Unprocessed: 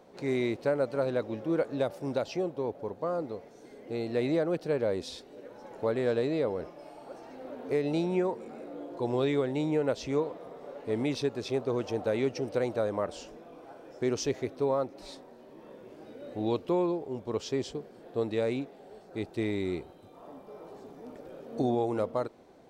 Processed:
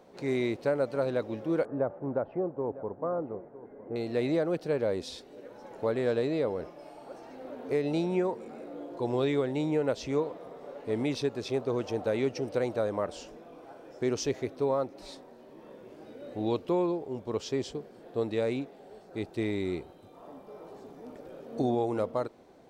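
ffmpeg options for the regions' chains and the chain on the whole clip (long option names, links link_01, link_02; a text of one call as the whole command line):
ffmpeg -i in.wav -filter_complex "[0:a]asettb=1/sr,asplit=3[link_01][link_02][link_03];[link_01]atrim=end=1.654[link_04];[link_02]atrim=start=1.65:end=3.96,asetpts=PTS-STARTPTS,afade=type=in:duration=0.004:curve=qsin,afade=type=out:start_time=2.306:duration=0.004:curve=qsin,lowpass=frequency=1500:width=0.5412,lowpass=frequency=1500:width=1.3066,aecho=1:1:958:0.141,atrim=end_sample=101871[link_05];[link_03]atrim=start=3.956[link_06];[link_04][link_05]acrossfade=duration=0.004:curve1=hsin:curve2=qsin[link_07];[link_07][link_06]acrossfade=duration=0.004:curve1=qsin:curve2=hsin" out.wav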